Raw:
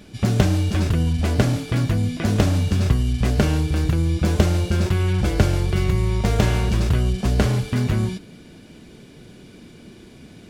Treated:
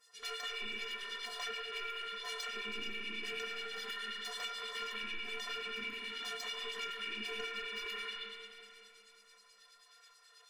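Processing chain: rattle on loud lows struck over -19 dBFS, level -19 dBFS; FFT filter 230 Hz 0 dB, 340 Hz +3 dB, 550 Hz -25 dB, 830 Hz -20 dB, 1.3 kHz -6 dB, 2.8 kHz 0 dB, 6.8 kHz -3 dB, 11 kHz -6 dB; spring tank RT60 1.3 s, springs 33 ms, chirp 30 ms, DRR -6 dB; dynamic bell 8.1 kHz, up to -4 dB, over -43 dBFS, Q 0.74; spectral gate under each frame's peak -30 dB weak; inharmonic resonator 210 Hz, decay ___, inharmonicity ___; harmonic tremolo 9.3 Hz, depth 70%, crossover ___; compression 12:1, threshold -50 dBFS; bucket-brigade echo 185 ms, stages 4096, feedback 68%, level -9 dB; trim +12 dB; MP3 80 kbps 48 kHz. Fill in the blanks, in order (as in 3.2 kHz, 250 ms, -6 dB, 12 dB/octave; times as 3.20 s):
0.26 s, 0.03, 1.9 kHz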